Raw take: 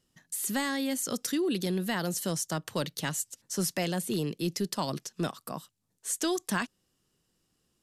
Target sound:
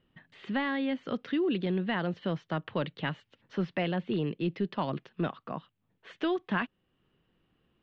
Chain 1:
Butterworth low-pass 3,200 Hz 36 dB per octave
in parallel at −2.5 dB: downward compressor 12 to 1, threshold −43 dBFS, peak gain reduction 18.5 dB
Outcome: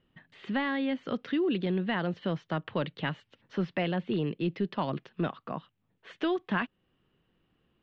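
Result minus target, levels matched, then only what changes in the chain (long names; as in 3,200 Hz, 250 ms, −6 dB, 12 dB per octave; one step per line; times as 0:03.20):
downward compressor: peak gain reduction −7.5 dB
change: downward compressor 12 to 1, threshold −51 dBFS, peak gain reduction 26 dB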